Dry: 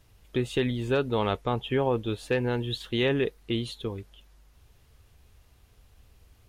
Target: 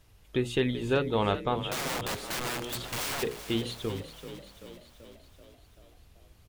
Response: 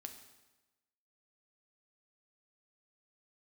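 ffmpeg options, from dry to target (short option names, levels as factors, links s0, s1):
-filter_complex "[0:a]bandreject=f=60:t=h:w=6,bandreject=f=120:t=h:w=6,bandreject=f=180:t=h:w=6,bandreject=f=240:t=h:w=6,bandreject=f=300:t=h:w=6,bandreject=f=360:t=h:w=6,bandreject=f=420:t=h:w=6,bandreject=f=480:t=h:w=6,bandreject=f=540:t=h:w=6,asplit=3[s0][s1][s2];[s0]afade=t=out:st=1.67:d=0.02[s3];[s1]aeval=exprs='(mod(26.6*val(0)+1,2)-1)/26.6':c=same,afade=t=in:st=1.67:d=0.02,afade=t=out:st=3.22:d=0.02[s4];[s2]afade=t=in:st=3.22:d=0.02[s5];[s3][s4][s5]amix=inputs=3:normalize=0,asplit=8[s6][s7][s8][s9][s10][s11][s12][s13];[s7]adelay=385,afreqshift=39,volume=0.251[s14];[s8]adelay=770,afreqshift=78,volume=0.151[s15];[s9]adelay=1155,afreqshift=117,volume=0.0902[s16];[s10]adelay=1540,afreqshift=156,volume=0.0543[s17];[s11]adelay=1925,afreqshift=195,volume=0.0327[s18];[s12]adelay=2310,afreqshift=234,volume=0.0195[s19];[s13]adelay=2695,afreqshift=273,volume=0.0117[s20];[s6][s14][s15][s16][s17][s18][s19][s20]amix=inputs=8:normalize=0"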